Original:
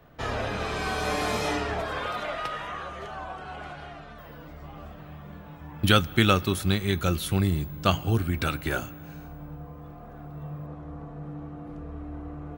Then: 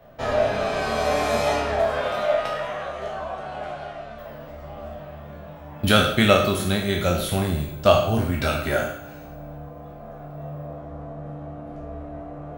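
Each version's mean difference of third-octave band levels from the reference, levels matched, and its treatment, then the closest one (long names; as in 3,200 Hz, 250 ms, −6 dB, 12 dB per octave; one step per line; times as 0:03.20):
3.0 dB: peak hold with a decay on every bin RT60 0.56 s
parametric band 630 Hz +12.5 dB 0.4 octaves
flanger 0.31 Hz, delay 5.9 ms, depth 2.4 ms, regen −82%
coupled-rooms reverb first 0.64 s, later 3 s, from −25 dB, DRR 5 dB
level +4 dB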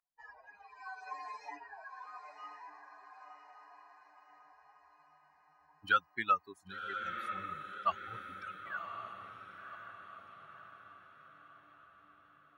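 13.0 dB: spectral dynamics exaggerated over time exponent 3
upward compression, threshold −43 dBFS
resonant band-pass 1,300 Hz, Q 2.6
on a send: feedback delay with all-pass diffusion 1,066 ms, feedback 51%, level −7.5 dB
on the sum: level +1 dB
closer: first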